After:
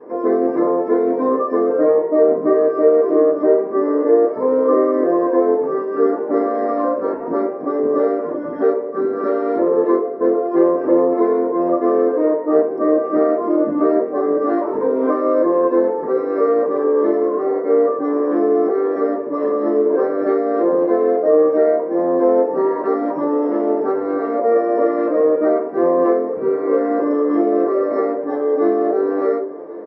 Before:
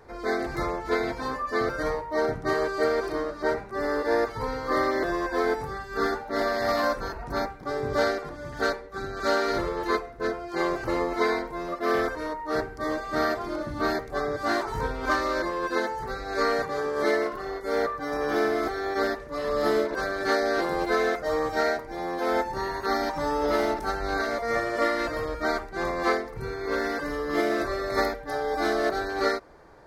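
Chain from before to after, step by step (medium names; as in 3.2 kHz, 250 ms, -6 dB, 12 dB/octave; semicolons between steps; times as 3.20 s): compression, threshold -29 dBFS, peak gain reduction 10 dB; band-pass filter 430 Hz, Q 3.6; feedback delay 1090 ms, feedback 58%, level -18.5 dB; reverberation RT60 0.35 s, pre-delay 3 ms, DRR -14.5 dB; trim +8.5 dB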